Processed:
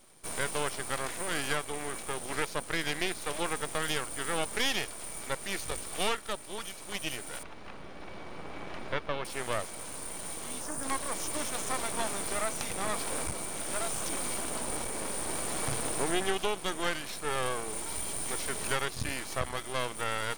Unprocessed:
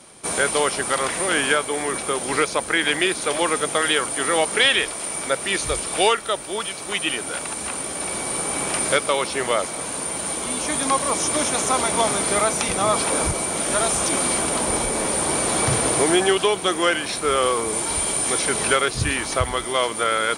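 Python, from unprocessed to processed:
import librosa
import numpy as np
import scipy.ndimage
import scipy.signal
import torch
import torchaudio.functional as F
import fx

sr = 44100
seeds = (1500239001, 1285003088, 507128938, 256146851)

y = fx.spec_erase(x, sr, start_s=10.61, length_s=0.23, low_hz=1800.0, high_hz=4600.0)
y = np.maximum(y, 0.0)
y = fx.air_absorb(y, sr, metres=250.0, at=(7.43, 9.25))
y = y * librosa.db_to_amplitude(-8.5)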